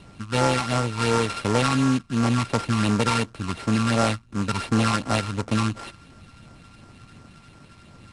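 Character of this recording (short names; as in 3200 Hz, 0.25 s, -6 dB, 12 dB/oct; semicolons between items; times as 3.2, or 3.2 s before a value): a buzz of ramps at a fixed pitch in blocks of 32 samples; phasing stages 12, 2.8 Hz, lowest notch 510–3500 Hz; aliases and images of a low sample rate 6600 Hz, jitter 20%; IMA ADPCM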